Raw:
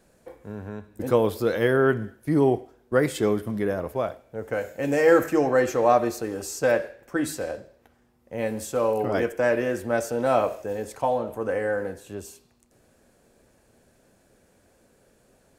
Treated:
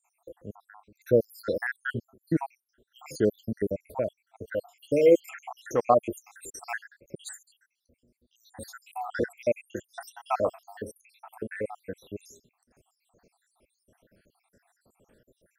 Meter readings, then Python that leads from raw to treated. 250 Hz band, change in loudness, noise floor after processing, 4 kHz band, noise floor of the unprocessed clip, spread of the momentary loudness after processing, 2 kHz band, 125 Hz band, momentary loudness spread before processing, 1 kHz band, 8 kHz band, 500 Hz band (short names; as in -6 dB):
-7.0 dB, -4.5 dB, -80 dBFS, -8.0 dB, -62 dBFS, 21 LU, -7.5 dB, -7.0 dB, 14 LU, -6.0 dB, -7.5 dB, -5.5 dB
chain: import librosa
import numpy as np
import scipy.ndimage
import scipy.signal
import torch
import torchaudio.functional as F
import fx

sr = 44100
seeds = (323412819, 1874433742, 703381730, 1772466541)

y = fx.spec_dropout(x, sr, seeds[0], share_pct=81)